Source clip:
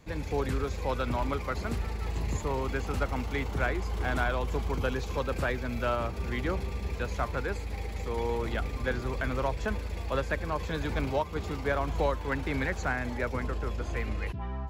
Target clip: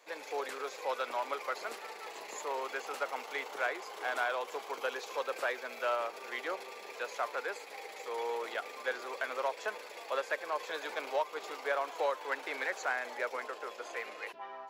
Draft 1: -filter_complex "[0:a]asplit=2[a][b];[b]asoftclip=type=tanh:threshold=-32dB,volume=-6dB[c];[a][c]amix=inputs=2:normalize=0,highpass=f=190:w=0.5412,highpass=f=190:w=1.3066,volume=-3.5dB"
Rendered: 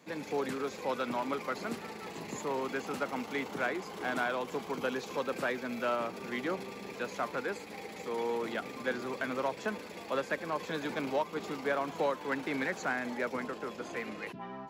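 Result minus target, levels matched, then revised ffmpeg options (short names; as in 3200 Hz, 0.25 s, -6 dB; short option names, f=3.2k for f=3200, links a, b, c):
250 Hz band +14.5 dB
-filter_complex "[0:a]asplit=2[a][b];[b]asoftclip=type=tanh:threshold=-32dB,volume=-6dB[c];[a][c]amix=inputs=2:normalize=0,highpass=f=470:w=0.5412,highpass=f=470:w=1.3066,volume=-3.5dB"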